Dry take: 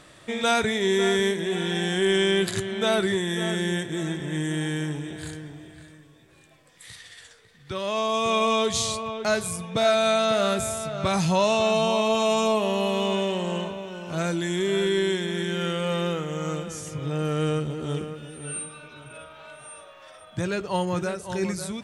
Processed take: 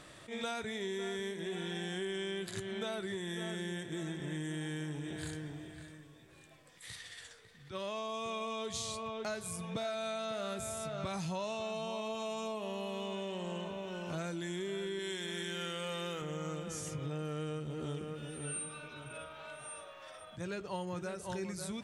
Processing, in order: 14.99–16.22 tilt +2 dB/oct; compressor 6:1, threshold -33 dBFS, peak gain reduction 15 dB; attack slew limiter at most 210 dB/s; gain -3.5 dB

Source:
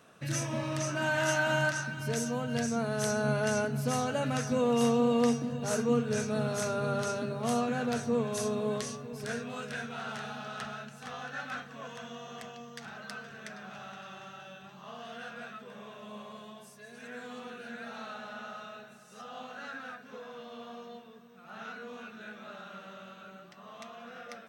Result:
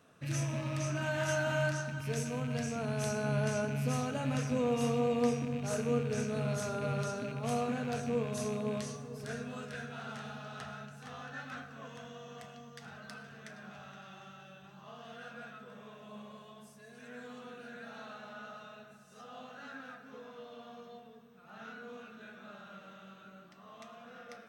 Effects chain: rattling part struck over -36 dBFS, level -32 dBFS; low shelf 250 Hz +5.5 dB; reverb RT60 1.4 s, pre-delay 5 ms, DRR 6.5 dB; gain -6.5 dB

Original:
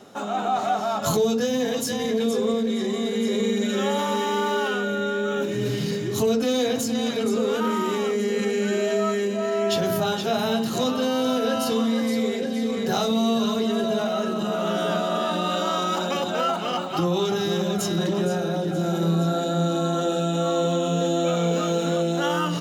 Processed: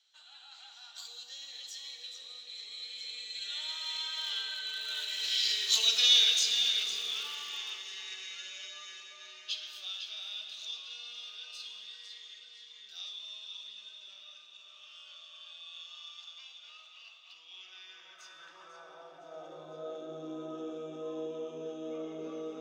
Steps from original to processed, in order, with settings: Doppler pass-by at 5.83, 26 m/s, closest 12 m; running mean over 4 samples; band-limited delay 0.464 s, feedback 69%, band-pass 530 Hz, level -14.5 dB; in parallel at -11.5 dB: Schmitt trigger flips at -27.5 dBFS; on the sum: high-pass sweep 3500 Hz -> 340 Hz, 17.24–20.24; reverb RT60 3.4 s, pre-delay 8 ms, DRR 4.5 dB; gain +6.5 dB

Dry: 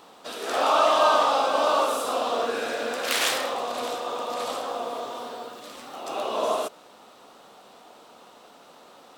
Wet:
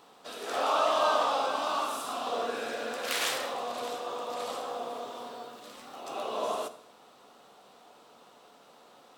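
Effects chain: 1.54–2.27 bell 500 Hz -14 dB 0.42 oct; reverb RT60 0.75 s, pre-delay 3 ms, DRR 9 dB; gain -6.5 dB

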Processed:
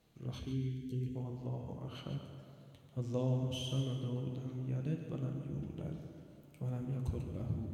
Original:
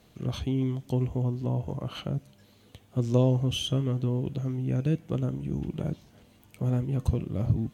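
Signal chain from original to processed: plate-style reverb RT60 2.7 s, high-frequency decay 0.6×, DRR 4 dB; spectral delete 0.4–1.15, 480–1500 Hz; flange 0.75 Hz, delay 5.8 ms, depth 8 ms, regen -65%; on a send: thinning echo 0.142 s, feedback 26%, level -8 dB; on the sum: gain -8 dB

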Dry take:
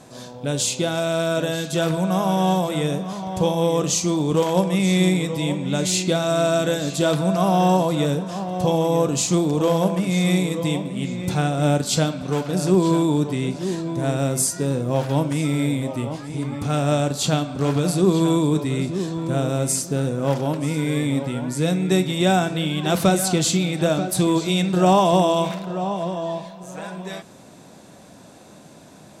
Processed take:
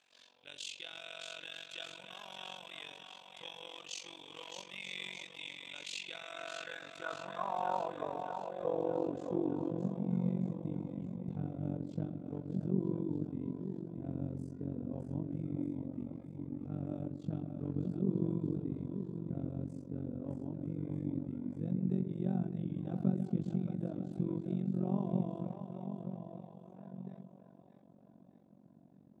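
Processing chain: band-pass sweep 2800 Hz -> 210 Hz, 5.94–9.93; split-band echo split 480 Hz, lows 0.134 s, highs 0.617 s, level -7 dB; AM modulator 46 Hz, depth 90%; gain -7.5 dB

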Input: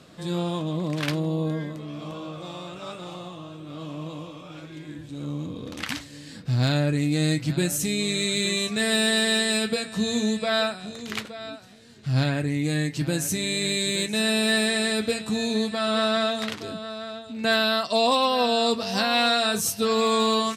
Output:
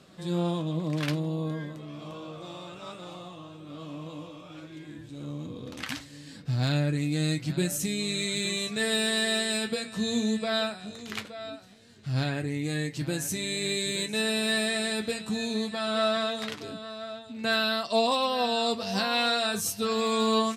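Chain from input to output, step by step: flange 0.13 Hz, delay 5.1 ms, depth 5.6 ms, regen +67%

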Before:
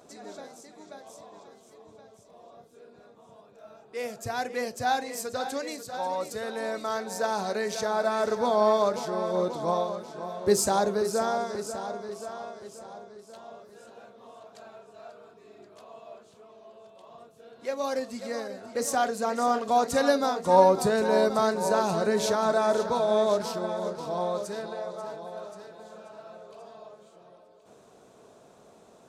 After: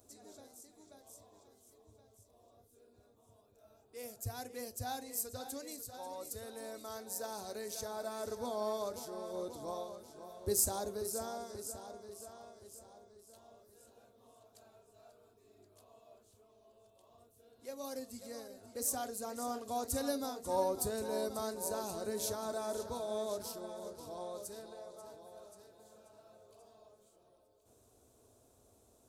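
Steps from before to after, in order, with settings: EQ curve 100 Hz 0 dB, 170 Hz -24 dB, 260 Hz -12 dB, 390 Hz -16 dB, 1900 Hz -22 dB, 6800 Hz -9 dB, 12000 Hz +2 dB; gain +3 dB

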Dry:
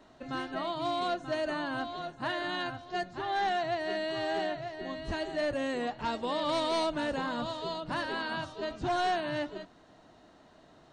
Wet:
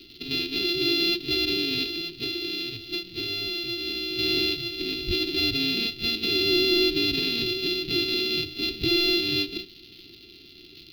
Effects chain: sample sorter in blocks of 64 samples; small resonant body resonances 250/1400/2500/3900 Hz, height 7 dB, ringing for 20 ms; crackle 220/s -42 dBFS; EQ curve 110 Hz 0 dB, 240 Hz -10 dB, 370 Hz +6 dB, 570 Hz -29 dB, 950 Hz -23 dB, 1400 Hz -23 dB, 2700 Hz +5 dB, 4400 Hz +12 dB, 8200 Hz -30 dB, 12000 Hz -7 dB; 1.9–4.19 compressor, threshold -34 dBFS, peak gain reduction 7.5 dB; ending taper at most 220 dB/s; gain +7.5 dB

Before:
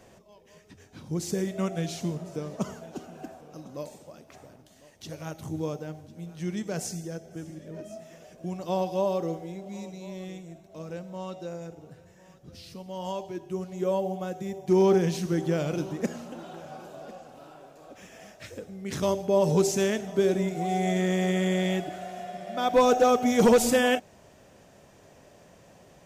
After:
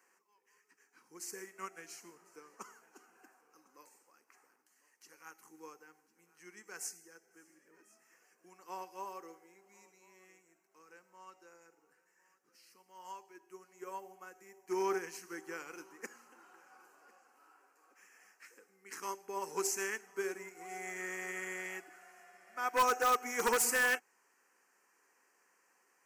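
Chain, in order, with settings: Bessel high-pass 620 Hz, order 4; fixed phaser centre 1500 Hz, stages 4; in parallel at -7 dB: wrapped overs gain 23 dB; on the sum: upward expander 1.5:1, over -46 dBFS

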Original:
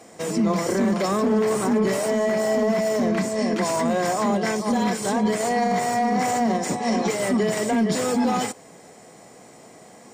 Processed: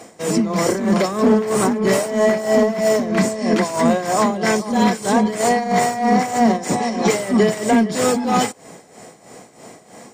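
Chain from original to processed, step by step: tremolo 3.1 Hz, depth 74%; gain +8 dB

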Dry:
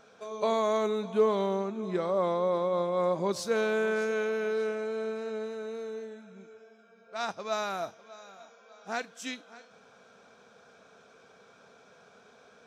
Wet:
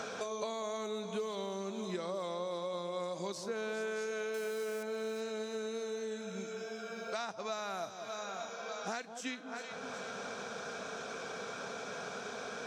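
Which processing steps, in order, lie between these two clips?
4.34–4.83 switching spikes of -33.5 dBFS; bell 6600 Hz +10 dB 2 oct; compressor 1.5:1, threshold -42 dBFS, peak gain reduction 8.5 dB; echo with dull and thin repeats by turns 0.19 s, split 1000 Hz, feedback 51%, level -11 dB; three-band squash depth 100%; gain -4 dB

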